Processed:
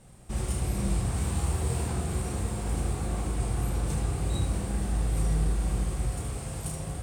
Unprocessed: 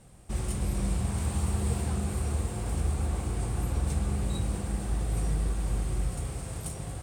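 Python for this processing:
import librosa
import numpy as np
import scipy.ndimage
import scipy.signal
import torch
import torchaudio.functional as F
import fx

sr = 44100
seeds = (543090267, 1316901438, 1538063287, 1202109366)

y = fx.room_early_taps(x, sr, ms=(32, 76), db=(-5.0, -6.0))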